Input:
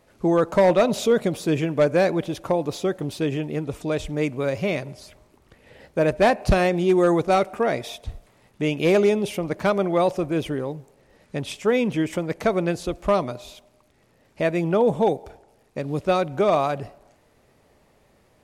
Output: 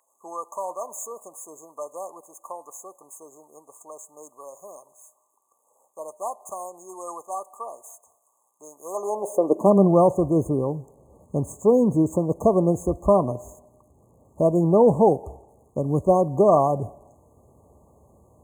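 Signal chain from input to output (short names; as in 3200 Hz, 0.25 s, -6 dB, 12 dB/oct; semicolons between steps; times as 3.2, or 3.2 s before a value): median filter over 3 samples; brick-wall FIR band-stop 1200–6300 Hz; high-pass sweep 1800 Hz -> 69 Hz, 8.83–10.21; gain +3 dB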